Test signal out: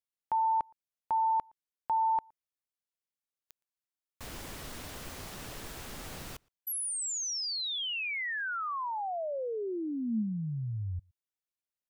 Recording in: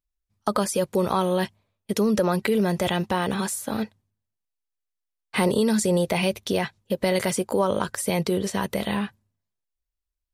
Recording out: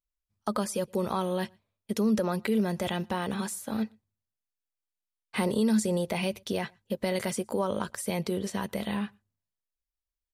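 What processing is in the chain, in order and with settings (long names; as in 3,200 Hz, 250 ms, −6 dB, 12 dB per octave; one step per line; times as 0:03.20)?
dynamic equaliser 220 Hz, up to +6 dB, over −41 dBFS, Q 7.1
slap from a distant wall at 20 metres, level −30 dB
level −7 dB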